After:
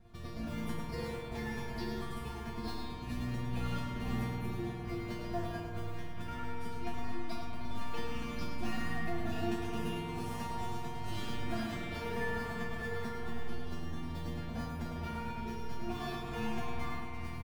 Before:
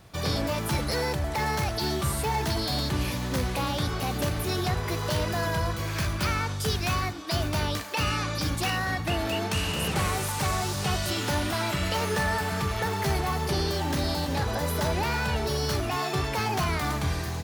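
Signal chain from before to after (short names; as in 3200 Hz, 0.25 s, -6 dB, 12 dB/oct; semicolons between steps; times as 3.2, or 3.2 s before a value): high shelf 2500 Hz -7.5 dB; notches 60/120 Hz; in parallel at -9.5 dB: bit-crush 5-bit; on the sum: limiter -21.5 dBFS, peak gain reduction 6 dB; tone controls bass +14 dB, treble -4 dB; negative-ratio compressor -21 dBFS, ratio -0.5; resonator bank A#3 fifth, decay 0.44 s; on a send: loudspeakers at several distances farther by 11 m -12 dB, 36 m -6 dB; on the sum: spring tank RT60 3.6 s, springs 49 ms, chirp 60 ms, DRR 0 dB; gain +5 dB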